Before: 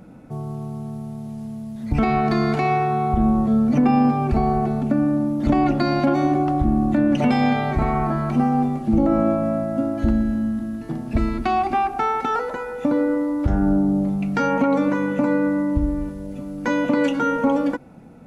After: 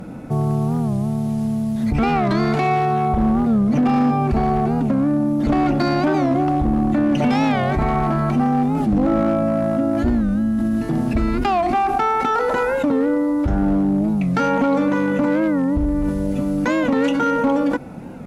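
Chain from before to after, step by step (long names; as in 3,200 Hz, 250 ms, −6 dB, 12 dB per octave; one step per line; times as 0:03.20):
in parallel at 0 dB: compressor whose output falls as the input rises −29 dBFS, ratio −1
on the sum: asymmetric clip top −13 dBFS, bottom −11.5 dBFS
wow of a warped record 45 rpm, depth 160 cents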